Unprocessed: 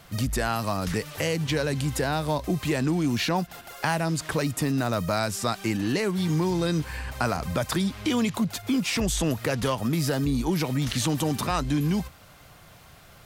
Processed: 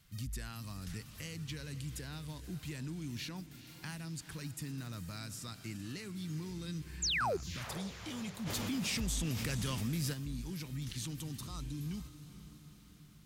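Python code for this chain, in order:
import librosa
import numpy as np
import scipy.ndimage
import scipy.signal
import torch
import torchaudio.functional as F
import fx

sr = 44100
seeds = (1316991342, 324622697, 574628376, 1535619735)

p1 = fx.spec_repair(x, sr, seeds[0], start_s=11.32, length_s=0.45, low_hz=1400.0, high_hz=3500.0, source='both')
p2 = fx.tone_stack(p1, sr, knobs='6-0-2')
p3 = fx.spec_paint(p2, sr, seeds[1], shape='fall', start_s=7.02, length_s=0.35, low_hz=340.0, high_hz=7800.0, level_db=-34.0)
p4 = p3 + fx.echo_diffused(p3, sr, ms=459, feedback_pct=60, wet_db=-13.0, dry=0)
p5 = fx.env_flatten(p4, sr, amount_pct=70, at=(8.45, 10.12), fade=0.02)
y = p5 * librosa.db_to_amplitude(1.0)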